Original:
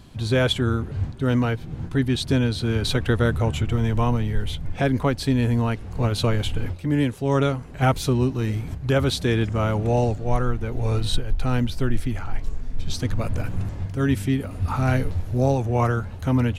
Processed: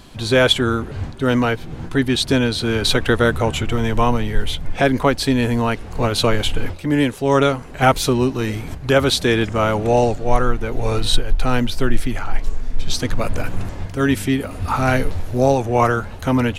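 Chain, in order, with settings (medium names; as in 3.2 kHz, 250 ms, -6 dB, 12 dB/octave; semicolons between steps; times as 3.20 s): peaking EQ 100 Hz -10 dB 2.4 oct; trim +8.5 dB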